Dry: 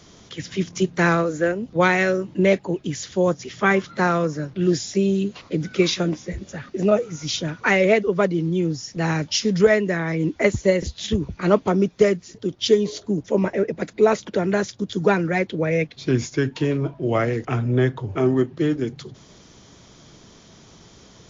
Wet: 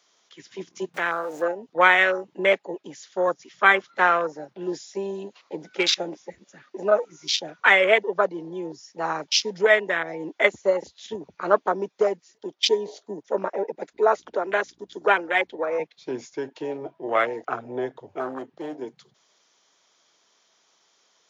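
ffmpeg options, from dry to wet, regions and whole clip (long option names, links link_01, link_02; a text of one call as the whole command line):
ffmpeg -i in.wav -filter_complex "[0:a]asettb=1/sr,asplit=3[link_01][link_02][link_03];[link_01]atrim=end=0.944[link_04];[link_02]atrim=start=0.94:end=1.42,asetpts=PTS-STARTPTS,afade=type=in:duration=0.004:curve=qsin,afade=type=out:start_time=0.476:duration=0.004:curve=qsin,aeval=exprs='val(0)+0.5*0.0473*sgn(val(0))':channel_layout=same,acompressor=threshold=-25dB:ratio=2.5:attack=3.2:release=140:knee=1:detection=peak[link_05];[link_03]atrim=start=1.416[link_06];[link_04][link_05]acrossfade=duration=0.004:curve1=hsin:curve2=qsin[link_07];[link_07][link_06]acrossfade=duration=0.004:curve1=qsin:curve2=hsin,asettb=1/sr,asplit=3[link_08][link_09][link_10];[link_08]atrim=end=13.934[link_11];[link_09]atrim=start=13.93:end=15.8,asetpts=PTS-STARTPTS,afade=type=in:duration=0.004:curve=qsin,afade=type=out:start_time=1.866:duration=0.004:curve=qsin,highpass=frequency=220:width=0.5412,highpass=frequency=220:width=1.3066,aeval=exprs='val(0)+0.0126*(sin(2*PI*60*n/s)+sin(2*PI*2*60*n/s)/2+sin(2*PI*3*60*n/s)/3+sin(2*PI*4*60*n/s)/4+sin(2*PI*5*60*n/s)/5)':channel_layout=same[link_12];[link_10]atrim=start=15.796[link_13];[link_11][link_12]acrossfade=duration=0.004:curve1=hsin:curve2=qsin[link_14];[link_14][link_13]acrossfade=duration=0.004:curve1=qsin:curve2=hsin,asettb=1/sr,asplit=3[link_15][link_16][link_17];[link_15]atrim=end=18.204[link_18];[link_16]atrim=start=18.2:end=18.75,asetpts=PTS-STARTPTS,afade=type=in:duration=0.004:curve=qsin,afade=type=out:start_time=0.546:duration=0.004:curve=qsin,equalizer=frequency=380:width=5.1:gain=-6,asoftclip=type=hard:threshold=-19dB[link_19];[link_17]atrim=start=18.746[link_20];[link_18][link_19]acrossfade=duration=0.004:curve1=hsin:curve2=qsin[link_21];[link_21][link_20]acrossfade=duration=0.004:curve1=qsin:curve2=hsin,afwtdn=0.0501,highpass=730,volume=4.5dB" out.wav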